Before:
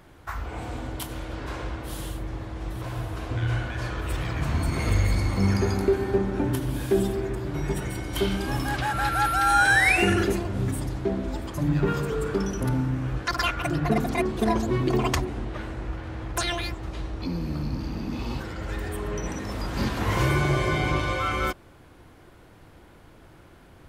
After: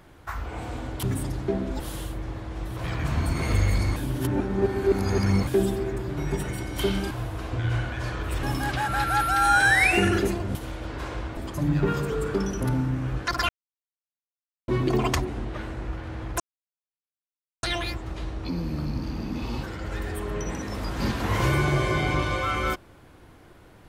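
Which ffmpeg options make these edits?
-filter_complex "[0:a]asplit=13[a][b][c][d][e][f][g][h][i][j][k][l][m];[a]atrim=end=1.032[n];[b]atrim=start=10.598:end=11.372[o];[c]atrim=start=1.848:end=2.892[p];[d]atrim=start=4.208:end=5.332[q];[e]atrim=start=5.328:end=6.842,asetpts=PTS-STARTPTS,areverse[r];[f]atrim=start=6.838:end=8.482[s];[g]atrim=start=2.888:end=4.212[t];[h]atrim=start=8.478:end=10.602[u];[i]atrim=start=1.028:end=1.852[v];[j]atrim=start=11.368:end=13.49,asetpts=PTS-STARTPTS,afade=t=out:st=2.118:d=0.004:c=hsin[w];[k]atrim=start=13.49:end=14.68,asetpts=PTS-STARTPTS,volume=0[x];[l]atrim=start=14.68:end=16.4,asetpts=PTS-STARTPTS,afade=t=in:d=0.004:c=hsin,afade=t=out:st=1.716:d=0.004:c=hsin,apad=pad_dur=1.23[y];[m]atrim=start=16.4,asetpts=PTS-STARTPTS,afade=t=in:d=0.004:c=hsin[z];[n][o]acrossfade=d=0.004:c1=hsin:c2=hsin[aa];[aa][p]acrossfade=d=0.004:c1=hsin:c2=hsin[ab];[ab][q]acrossfade=d=0.004:c1=hsin:c2=hsin[ac];[ac][r]acrossfade=d=0.004:c1=hsin:c2=hsin[ad];[ad][s]acrossfade=d=0.004:c1=hsin:c2=hsin[ae];[ae][t]acrossfade=d=0.004:c1=hsin:c2=hsin[af];[af][u]acrossfade=d=0.004:c1=hsin:c2=hsin[ag];[ag][v]acrossfade=d=0.004:c1=hsin:c2=hsin[ah];[w][x][y][z]concat=n=4:v=0:a=1[ai];[ah][ai]acrossfade=d=0.004:c1=hsin:c2=hsin"

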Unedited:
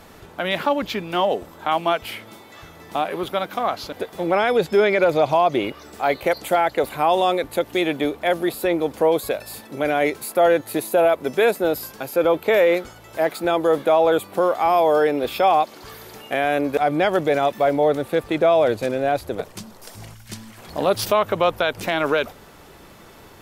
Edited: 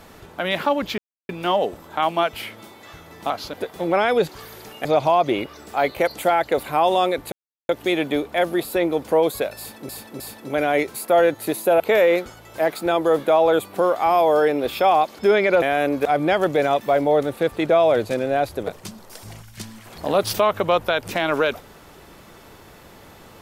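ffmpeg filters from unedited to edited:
-filter_complex "[0:a]asplit=11[a][b][c][d][e][f][g][h][i][j][k];[a]atrim=end=0.98,asetpts=PTS-STARTPTS,afade=t=out:st=0.976:d=0.004:c=hsin,apad=pad_dur=0.31[l];[b]atrim=start=0.98:end=2.992,asetpts=PTS-STARTPTS,afade=t=in:d=0.004:c=hsin[m];[c]atrim=start=3.688:end=4.682[n];[d]atrim=start=15.778:end=16.342[o];[e]atrim=start=5.108:end=7.58,asetpts=PTS-STARTPTS,afade=t=out:st=2.468:d=0.004:c=hsin,apad=pad_dur=0.37[p];[f]atrim=start=7.58:end=9.782,asetpts=PTS-STARTPTS,afade=t=in:d=0.004:c=hsin[q];[g]atrim=start=9.468:end=9.782[r];[h]atrim=start=9.468:end=11.072[s];[i]atrim=start=12.388:end=15.782[t];[j]atrim=start=4.678:end=5.112[u];[k]atrim=start=16.338[v];[l][m]concat=n=2:v=0:a=1[w];[w][n]acrossfade=d=0.004:c1=hsin:c2=hsin[x];[x][o]acrossfade=d=0.004:c1=hsin:c2=hsin[y];[p][q]concat=n=2:v=0:a=1[z];[y][z]acrossfade=d=0.004:c1=hsin:c2=hsin[aa];[aa][r]acrossfade=d=0.004:c1=hsin:c2=hsin[ab];[ab][s]acrossfade=d=0.004:c1=hsin:c2=hsin[ac];[ac][t]acrossfade=d=0.004:c1=hsin:c2=hsin[ad];[ad][u]acrossfade=d=0.004:c1=hsin:c2=hsin[ae];[ae][v]acrossfade=d=0.004:c1=hsin:c2=hsin"

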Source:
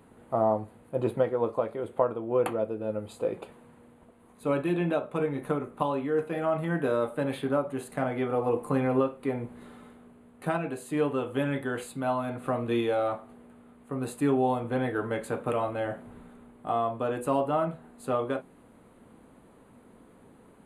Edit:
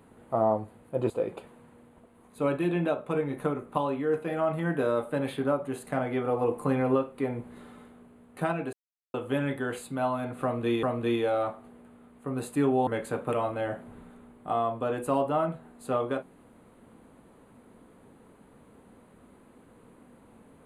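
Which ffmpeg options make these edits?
-filter_complex "[0:a]asplit=6[a][b][c][d][e][f];[a]atrim=end=1.102[g];[b]atrim=start=3.148:end=10.78,asetpts=PTS-STARTPTS,afade=t=out:st=7.628:d=0.004:c=hsin[h];[c]atrim=start=10.78:end=11.19,asetpts=PTS-STARTPTS,volume=0[i];[d]atrim=start=11.19:end=12.882,asetpts=PTS-STARTPTS,afade=t=in:d=0.004:c=hsin[j];[e]atrim=start=12.478:end=14.522[k];[f]atrim=start=15.058[l];[h][i][j]concat=n=3:v=0:a=1[m];[g][m]acrossfade=d=0.004:c1=hsin:c2=hsin[n];[n][k]acrossfade=d=0.004:c1=hsin:c2=hsin[o];[o][l]acrossfade=d=0.004:c1=hsin:c2=hsin"

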